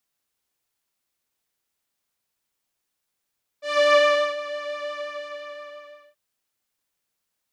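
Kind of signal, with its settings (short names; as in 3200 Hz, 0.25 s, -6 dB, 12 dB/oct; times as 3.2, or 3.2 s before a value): synth patch with pulse-width modulation D5, detune 19 cents, oscillator 2 level -5.5 dB, sub -27 dB, noise -28.5 dB, filter lowpass, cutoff 2600 Hz, Q 0.9, filter envelope 1 oct, attack 0.285 s, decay 0.45 s, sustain -17 dB, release 1.23 s, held 1.30 s, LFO 5.8 Hz, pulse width 34%, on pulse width 20%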